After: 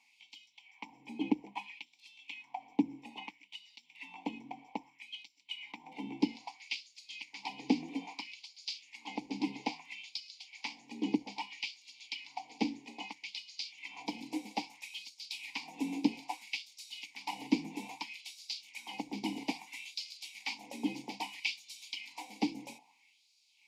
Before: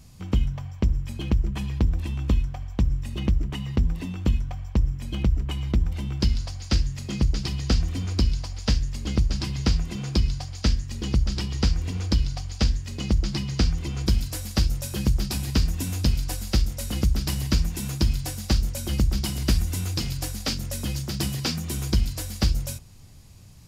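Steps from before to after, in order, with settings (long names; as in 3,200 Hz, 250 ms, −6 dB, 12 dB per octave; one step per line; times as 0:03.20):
formant filter u
phaser with its sweep stopped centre 350 Hz, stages 6
auto-filter high-pass sine 0.61 Hz 350–4,500 Hz
level +13.5 dB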